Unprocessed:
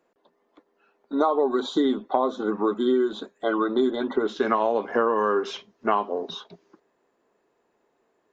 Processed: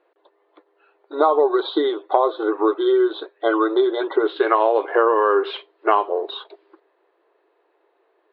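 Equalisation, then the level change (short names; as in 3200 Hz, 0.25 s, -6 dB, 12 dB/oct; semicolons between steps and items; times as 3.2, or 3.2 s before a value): brick-wall FIR high-pass 300 Hz; steep low-pass 4400 Hz 72 dB/oct; air absorption 68 m; +6.0 dB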